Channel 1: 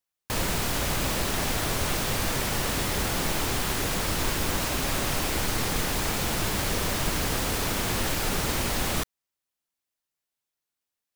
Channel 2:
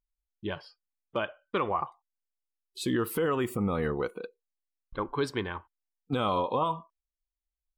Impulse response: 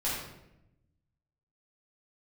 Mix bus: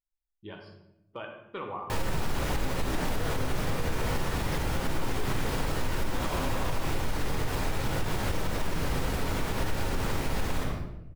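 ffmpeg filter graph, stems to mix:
-filter_complex "[0:a]highshelf=frequency=2800:gain=-9.5,adelay=1600,volume=-4dB,asplit=2[link_01][link_02];[link_02]volume=-4dB[link_03];[1:a]volume=-12dB,asplit=2[link_04][link_05];[link_05]volume=-6dB[link_06];[2:a]atrim=start_sample=2205[link_07];[link_03][link_06]amix=inputs=2:normalize=0[link_08];[link_08][link_07]afir=irnorm=-1:irlink=0[link_09];[link_01][link_04][link_09]amix=inputs=3:normalize=0,alimiter=limit=-19dB:level=0:latency=1:release=129"

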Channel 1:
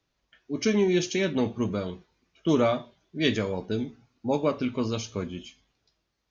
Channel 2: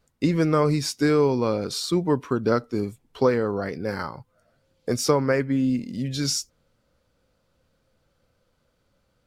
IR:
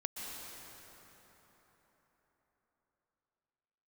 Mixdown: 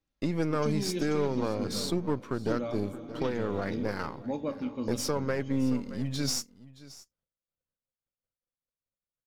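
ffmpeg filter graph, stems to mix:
-filter_complex "[0:a]lowshelf=frequency=320:gain=8.5,aecho=1:1:3.7:0.44,volume=-15.5dB,asplit=2[link_01][link_02];[link_02]volume=-6.5dB[link_03];[1:a]aeval=exprs='if(lt(val(0),0),0.447*val(0),val(0))':channel_layout=same,agate=range=-33dB:threshold=-52dB:ratio=3:detection=peak,volume=-2.5dB,asplit=2[link_04][link_05];[link_05]volume=-19dB[link_06];[2:a]atrim=start_sample=2205[link_07];[link_03][link_07]afir=irnorm=-1:irlink=0[link_08];[link_06]aecho=0:1:622:1[link_09];[link_01][link_04][link_08][link_09]amix=inputs=4:normalize=0,alimiter=limit=-17.5dB:level=0:latency=1:release=346"

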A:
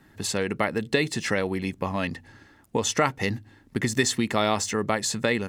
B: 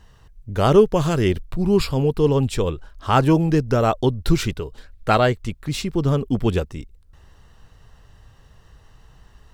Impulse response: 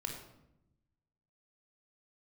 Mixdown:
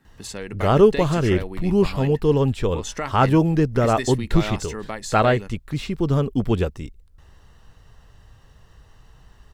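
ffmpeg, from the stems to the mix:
-filter_complex "[0:a]volume=-6.5dB[link_01];[1:a]acrossover=split=3200[link_02][link_03];[link_03]acompressor=threshold=-41dB:ratio=4:attack=1:release=60[link_04];[link_02][link_04]amix=inputs=2:normalize=0,adelay=50,volume=-0.5dB[link_05];[link_01][link_05]amix=inputs=2:normalize=0"

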